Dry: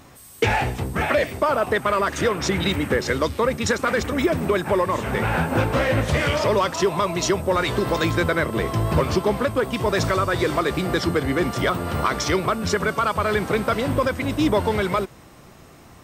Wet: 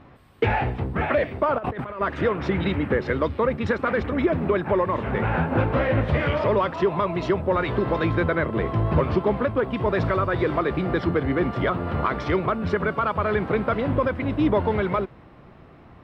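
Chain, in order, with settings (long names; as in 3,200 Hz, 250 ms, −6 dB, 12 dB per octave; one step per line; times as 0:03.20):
0:01.58–0:02.01: compressor whose output falls as the input rises −30 dBFS, ratio −1
high-frequency loss of the air 420 metres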